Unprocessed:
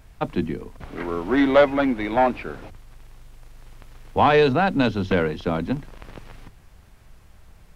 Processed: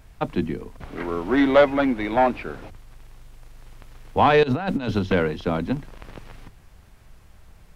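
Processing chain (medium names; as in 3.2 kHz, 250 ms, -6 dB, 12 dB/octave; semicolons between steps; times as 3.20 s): 4.43–4.99 s: compressor with a negative ratio -23 dBFS, ratio -0.5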